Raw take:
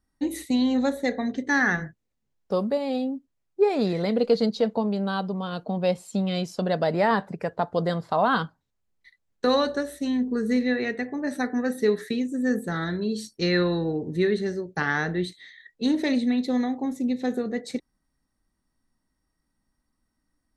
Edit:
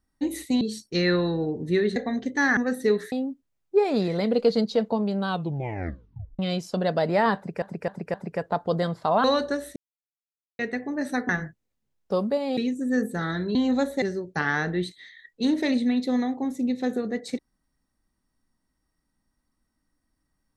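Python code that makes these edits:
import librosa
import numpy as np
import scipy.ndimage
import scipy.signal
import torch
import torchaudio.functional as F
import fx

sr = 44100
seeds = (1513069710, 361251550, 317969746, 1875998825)

y = fx.edit(x, sr, fx.swap(start_s=0.61, length_s=0.47, other_s=13.08, other_length_s=1.35),
    fx.swap(start_s=1.69, length_s=1.28, other_s=11.55, other_length_s=0.55),
    fx.tape_stop(start_s=5.13, length_s=1.11),
    fx.repeat(start_s=7.21, length_s=0.26, count=4),
    fx.cut(start_s=8.31, length_s=1.19),
    fx.silence(start_s=10.02, length_s=0.83), tone=tone)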